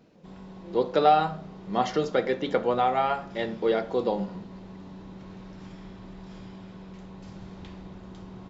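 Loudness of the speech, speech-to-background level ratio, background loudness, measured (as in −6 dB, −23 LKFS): −26.0 LKFS, 18.5 dB, −44.5 LKFS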